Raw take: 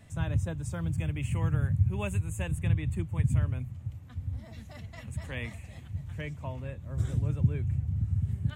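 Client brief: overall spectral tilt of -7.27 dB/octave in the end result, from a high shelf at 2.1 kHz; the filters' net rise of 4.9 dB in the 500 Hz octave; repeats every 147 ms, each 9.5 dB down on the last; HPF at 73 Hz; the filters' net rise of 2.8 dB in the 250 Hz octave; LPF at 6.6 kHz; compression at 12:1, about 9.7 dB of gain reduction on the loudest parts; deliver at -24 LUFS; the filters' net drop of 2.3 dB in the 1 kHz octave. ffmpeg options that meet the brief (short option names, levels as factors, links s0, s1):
-af "highpass=73,lowpass=6600,equalizer=f=250:t=o:g=4.5,equalizer=f=500:t=o:g=6,equalizer=f=1000:t=o:g=-6.5,highshelf=f=2100:g=6,acompressor=threshold=0.0355:ratio=12,aecho=1:1:147|294|441|588:0.335|0.111|0.0365|0.012,volume=3.98"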